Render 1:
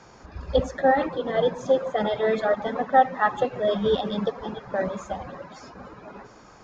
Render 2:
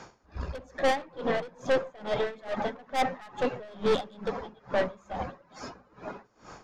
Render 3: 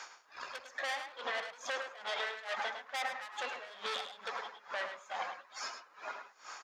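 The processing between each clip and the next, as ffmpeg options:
ffmpeg -i in.wav -af "aeval=exprs='(tanh(20*val(0)+0.4)-tanh(0.4))/20':channel_layout=same,bandreject=frequency=50:width_type=h:width=6,bandreject=frequency=100:width_type=h:width=6,bandreject=frequency=150:width_type=h:width=6,bandreject=frequency=200:width_type=h:width=6,aeval=exprs='val(0)*pow(10,-25*(0.5-0.5*cos(2*PI*2.3*n/s))/20)':channel_layout=same,volume=6dB" out.wav
ffmpeg -i in.wav -filter_complex "[0:a]highpass=1300,alimiter=level_in=7dB:limit=-24dB:level=0:latency=1:release=85,volume=-7dB,asplit=2[link_01][link_02];[link_02]adelay=105,volume=-8dB,highshelf=frequency=4000:gain=-2.36[link_03];[link_01][link_03]amix=inputs=2:normalize=0,volume=5dB" out.wav

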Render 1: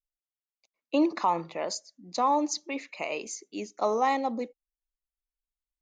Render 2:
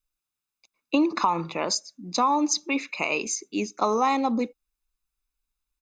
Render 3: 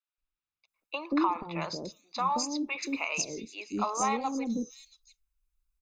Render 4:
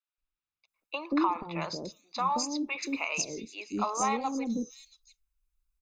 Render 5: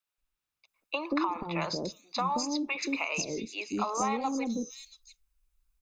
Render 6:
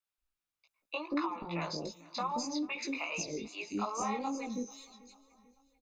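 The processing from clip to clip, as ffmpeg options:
ffmpeg -i in.wav -af "aecho=1:1:0.8:0.5,acompressor=threshold=-26dB:ratio=6,volume=7.5dB" out.wav
ffmpeg -i in.wav -filter_complex "[0:a]acrossover=split=540|4500[link_01][link_02][link_03];[link_01]adelay=180[link_04];[link_03]adelay=680[link_05];[link_04][link_02][link_05]amix=inputs=3:normalize=0,flanger=delay=0.6:depth=3:regen=-83:speed=1.6:shape=sinusoidal,asubboost=boost=3:cutoff=160" out.wav
ffmpeg -i in.wav -af anull out.wav
ffmpeg -i in.wav -filter_complex "[0:a]acrossover=split=520|6400[link_01][link_02][link_03];[link_01]acompressor=threshold=-37dB:ratio=4[link_04];[link_02]acompressor=threshold=-35dB:ratio=4[link_05];[link_03]acompressor=threshold=-54dB:ratio=4[link_06];[link_04][link_05][link_06]amix=inputs=3:normalize=0,volume=5dB" out.wav
ffmpeg -i in.wav -af "flanger=delay=17:depth=3:speed=2.5,aecho=1:1:441|882|1323:0.075|0.0375|0.0187,volume=-2dB" out.wav

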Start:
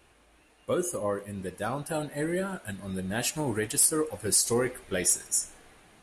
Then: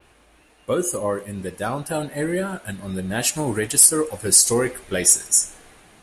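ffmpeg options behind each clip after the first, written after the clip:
ffmpeg -i in.wav -af "adynamicequalizer=threshold=0.0126:dfrequency=8100:dqfactor=0.79:tfrequency=8100:tqfactor=0.79:attack=5:release=100:ratio=0.375:range=2.5:mode=boostabove:tftype=bell,volume=6dB" out.wav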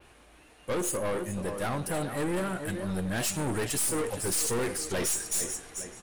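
ffmpeg -i in.wav -filter_complex "[0:a]asplit=2[link_01][link_02];[link_02]adelay=430,lowpass=frequency=3500:poles=1,volume=-11.5dB,asplit=2[link_03][link_04];[link_04]adelay=430,lowpass=frequency=3500:poles=1,volume=0.34,asplit=2[link_05][link_06];[link_06]adelay=430,lowpass=frequency=3500:poles=1,volume=0.34,asplit=2[link_07][link_08];[link_08]adelay=430,lowpass=frequency=3500:poles=1,volume=0.34[link_09];[link_01][link_03][link_05][link_07][link_09]amix=inputs=5:normalize=0,aeval=exprs='(tanh(22.4*val(0)+0.35)-tanh(0.35))/22.4':channel_layout=same" out.wav

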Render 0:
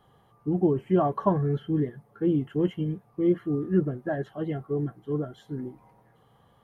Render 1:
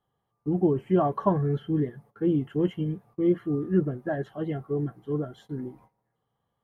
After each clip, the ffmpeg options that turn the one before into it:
ffmpeg -i in.wav -af "agate=range=-18dB:threshold=-52dB:ratio=16:detection=peak" out.wav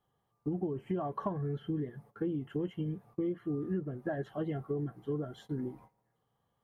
ffmpeg -i in.wav -af "acompressor=threshold=-31dB:ratio=10" out.wav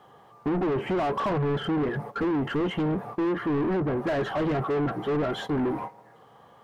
ffmpeg -i in.wav -filter_complex "[0:a]asplit=2[link_01][link_02];[link_02]highpass=frequency=720:poles=1,volume=35dB,asoftclip=type=tanh:threshold=-20.5dB[link_03];[link_01][link_03]amix=inputs=2:normalize=0,lowpass=frequency=1100:poles=1,volume=-6dB,asplit=2[link_04][link_05];[link_05]asoftclip=type=tanh:threshold=-29.5dB,volume=-6dB[link_06];[link_04][link_06]amix=inputs=2:normalize=0" out.wav

